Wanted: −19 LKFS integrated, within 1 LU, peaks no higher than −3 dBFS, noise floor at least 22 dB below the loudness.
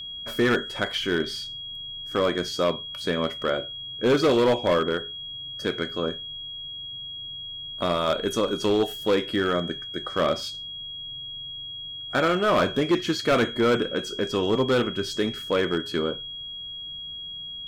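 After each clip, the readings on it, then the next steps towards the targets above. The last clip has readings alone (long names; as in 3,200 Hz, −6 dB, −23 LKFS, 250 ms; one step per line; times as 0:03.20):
share of clipped samples 1.6%; peaks flattened at −15.5 dBFS; interfering tone 3,300 Hz; level of the tone −34 dBFS; integrated loudness −26.0 LKFS; sample peak −15.5 dBFS; target loudness −19.0 LKFS
→ clipped peaks rebuilt −15.5 dBFS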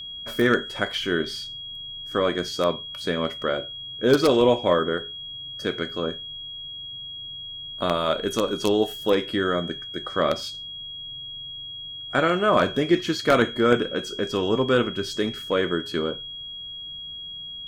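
share of clipped samples 0.0%; interfering tone 3,300 Hz; level of the tone −34 dBFS
→ notch filter 3,300 Hz, Q 30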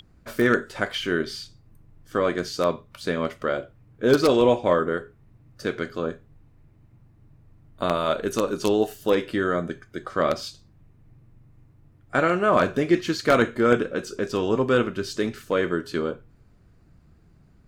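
interfering tone none found; integrated loudness −24.0 LKFS; sample peak −6.0 dBFS; target loudness −19.0 LKFS
→ level +5 dB
brickwall limiter −3 dBFS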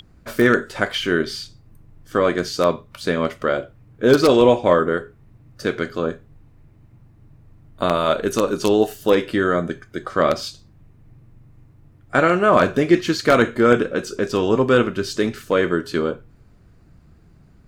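integrated loudness −19.5 LKFS; sample peak −3.0 dBFS; background noise floor −51 dBFS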